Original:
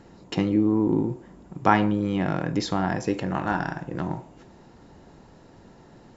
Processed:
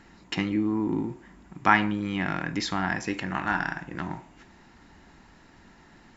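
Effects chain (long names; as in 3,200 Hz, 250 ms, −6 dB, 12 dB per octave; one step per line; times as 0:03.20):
octave-band graphic EQ 125/500/2,000 Hz −8/−11/+7 dB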